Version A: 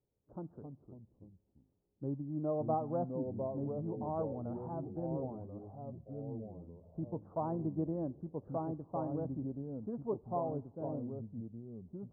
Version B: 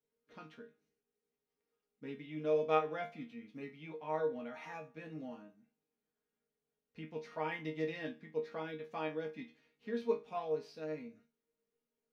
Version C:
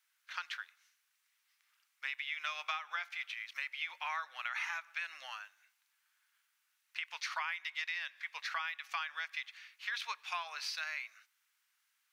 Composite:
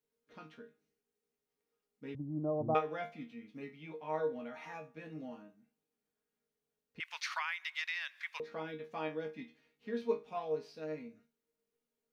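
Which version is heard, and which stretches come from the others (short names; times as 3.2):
B
2.15–2.75 from A
7–8.4 from C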